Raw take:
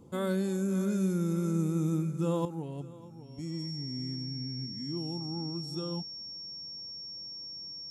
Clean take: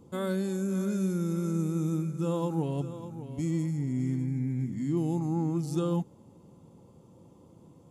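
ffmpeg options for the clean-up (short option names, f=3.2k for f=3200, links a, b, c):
-af "bandreject=f=5.5k:w=30,asetnsamples=n=441:p=0,asendcmd='2.45 volume volume 8dB',volume=0dB"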